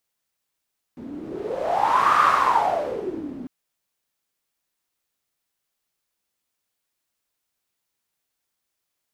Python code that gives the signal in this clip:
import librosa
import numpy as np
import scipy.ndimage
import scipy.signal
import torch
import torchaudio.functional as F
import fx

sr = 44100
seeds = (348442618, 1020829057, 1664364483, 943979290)

y = fx.wind(sr, seeds[0], length_s=2.5, low_hz=260.0, high_hz=1200.0, q=8.9, gusts=1, swing_db=17.0)